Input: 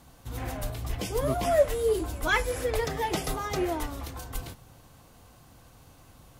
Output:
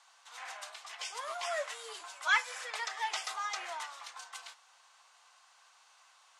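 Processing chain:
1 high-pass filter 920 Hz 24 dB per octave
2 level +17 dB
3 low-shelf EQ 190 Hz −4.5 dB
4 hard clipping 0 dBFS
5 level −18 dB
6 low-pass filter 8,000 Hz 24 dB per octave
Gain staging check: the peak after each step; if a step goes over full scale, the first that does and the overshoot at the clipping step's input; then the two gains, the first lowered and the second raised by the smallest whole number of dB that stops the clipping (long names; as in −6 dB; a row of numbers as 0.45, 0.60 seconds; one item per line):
−14.0, +3.0, +3.0, 0.0, −18.0, −17.0 dBFS
step 2, 3.0 dB
step 2 +14 dB, step 5 −15 dB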